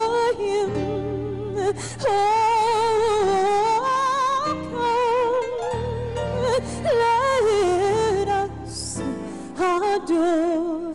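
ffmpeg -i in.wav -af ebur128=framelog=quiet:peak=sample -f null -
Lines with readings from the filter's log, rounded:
Integrated loudness:
  I:         -21.9 LUFS
  Threshold: -31.9 LUFS
Loudness range:
  LRA:         2.2 LU
  Threshold: -41.6 LUFS
  LRA low:   -22.7 LUFS
  LRA high:  -20.5 LUFS
Sample peak:
  Peak:      -15.5 dBFS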